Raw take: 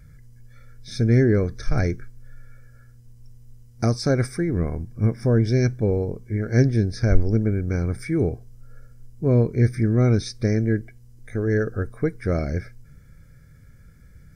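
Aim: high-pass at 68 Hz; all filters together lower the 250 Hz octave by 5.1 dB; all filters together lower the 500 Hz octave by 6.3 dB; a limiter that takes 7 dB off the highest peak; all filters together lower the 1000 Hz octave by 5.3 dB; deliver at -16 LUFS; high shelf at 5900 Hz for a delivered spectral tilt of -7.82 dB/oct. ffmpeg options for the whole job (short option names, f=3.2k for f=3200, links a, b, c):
-af "highpass=68,equalizer=f=250:t=o:g=-5,equalizer=f=500:t=o:g=-5,equalizer=f=1k:t=o:g=-5.5,highshelf=f=5.9k:g=-7,volume=11.5dB,alimiter=limit=-4.5dB:level=0:latency=1"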